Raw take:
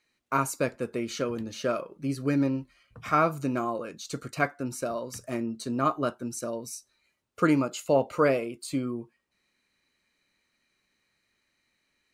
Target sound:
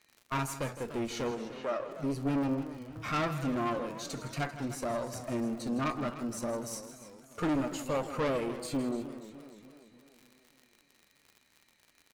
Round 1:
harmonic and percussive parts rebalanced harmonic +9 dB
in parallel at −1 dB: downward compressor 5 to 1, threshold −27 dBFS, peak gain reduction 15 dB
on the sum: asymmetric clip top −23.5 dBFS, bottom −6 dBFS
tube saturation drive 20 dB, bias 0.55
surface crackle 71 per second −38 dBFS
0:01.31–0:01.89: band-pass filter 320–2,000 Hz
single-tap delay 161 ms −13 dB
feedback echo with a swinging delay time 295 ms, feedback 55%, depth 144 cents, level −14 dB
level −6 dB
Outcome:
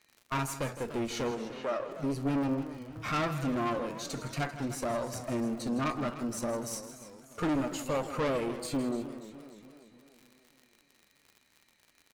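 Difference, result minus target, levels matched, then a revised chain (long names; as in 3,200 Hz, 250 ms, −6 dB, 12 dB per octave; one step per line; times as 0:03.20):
downward compressor: peak gain reduction −8 dB
harmonic and percussive parts rebalanced harmonic +9 dB
in parallel at −1 dB: downward compressor 5 to 1, threshold −37 dBFS, peak gain reduction 23 dB
on the sum: asymmetric clip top −23.5 dBFS, bottom −6 dBFS
tube saturation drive 20 dB, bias 0.55
surface crackle 71 per second −38 dBFS
0:01.31–0:01.89: band-pass filter 320–2,000 Hz
single-tap delay 161 ms −13 dB
feedback echo with a swinging delay time 295 ms, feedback 55%, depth 144 cents, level −14 dB
level −6 dB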